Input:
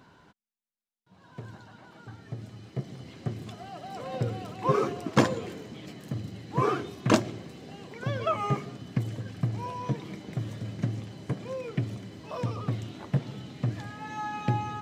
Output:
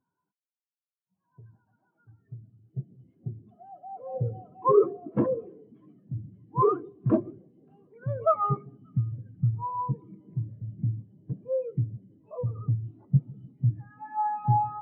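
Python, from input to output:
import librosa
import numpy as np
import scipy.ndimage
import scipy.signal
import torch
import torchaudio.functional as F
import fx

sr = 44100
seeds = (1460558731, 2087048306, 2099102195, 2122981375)

p1 = fx.bass_treble(x, sr, bass_db=-4, treble_db=-13)
p2 = fx.power_curve(p1, sr, exponent=0.7)
p3 = 10.0 ** (-17.0 / 20.0) * (np.abs((p2 / 10.0 ** (-17.0 / 20.0) + 3.0) % 4.0 - 2.0) - 1.0)
p4 = p2 + (p3 * librosa.db_to_amplitude(-5.0))
p5 = fx.echo_split(p4, sr, split_hz=1100.0, low_ms=151, high_ms=579, feedback_pct=52, wet_db=-15)
y = fx.spectral_expand(p5, sr, expansion=2.5)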